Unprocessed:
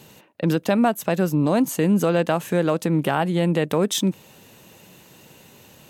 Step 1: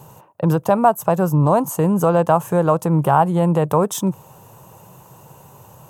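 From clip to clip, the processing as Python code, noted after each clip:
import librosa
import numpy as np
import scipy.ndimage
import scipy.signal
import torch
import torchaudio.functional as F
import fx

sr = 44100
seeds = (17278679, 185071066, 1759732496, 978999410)

y = fx.graphic_eq(x, sr, hz=(125, 250, 1000, 2000, 4000), db=(9, -10, 11, -12, -12))
y = F.gain(torch.from_numpy(y), 4.0).numpy()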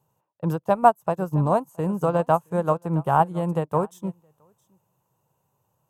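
y = x + 10.0 ** (-15.5 / 20.0) * np.pad(x, (int(669 * sr / 1000.0), 0))[:len(x)]
y = fx.upward_expand(y, sr, threshold_db=-28.0, expansion=2.5)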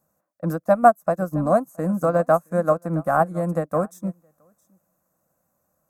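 y = fx.fixed_phaser(x, sr, hz=610.0, stages=8)
y = F.gain(torch.from_numpy(y), 5.0).numpy()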